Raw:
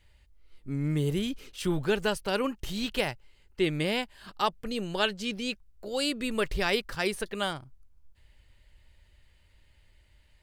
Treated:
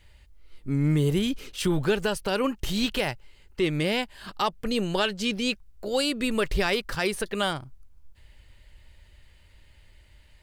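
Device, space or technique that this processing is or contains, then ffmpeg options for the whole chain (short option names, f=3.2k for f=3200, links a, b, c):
soft clipper into limiter: -af "asoftclip=type=tanh:threshold=-14dB,alimiter=limit=-21dB:level=0:latency=1:release=186,volume=6.5dB"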